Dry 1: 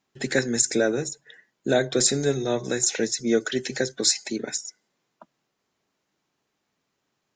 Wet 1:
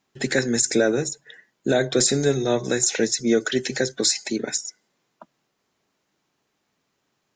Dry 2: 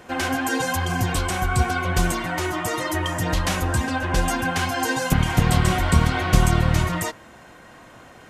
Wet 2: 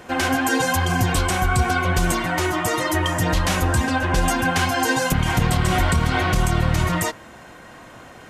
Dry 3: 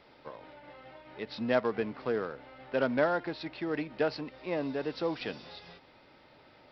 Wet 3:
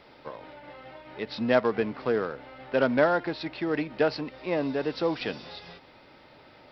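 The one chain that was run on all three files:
brickwall limiter −12.5 dBFS
normalise the peak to −9 dBFS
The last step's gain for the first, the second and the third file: +3.5, +3.5, +5.0 decibels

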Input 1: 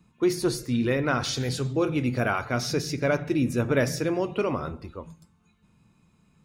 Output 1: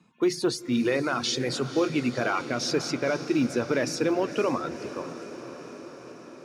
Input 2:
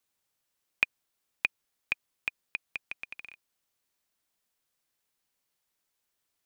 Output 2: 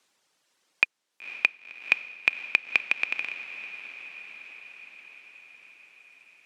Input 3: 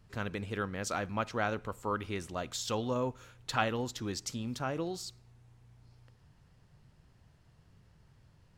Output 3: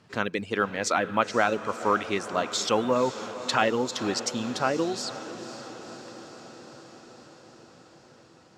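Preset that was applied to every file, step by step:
reverb reduction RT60 0.73 s
band-pass filter 210–7,200 Hz
brickwall limiter −18.5 dBFS
on a send: feedback delay with all-pass diffusion 507 ms, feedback 69%, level −13 dB
on the sum: floating-point word with a short mantissa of 6 bits
loudness normalisation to −27 LKFS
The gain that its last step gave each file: +3.5, +15.0, +10.5 decibels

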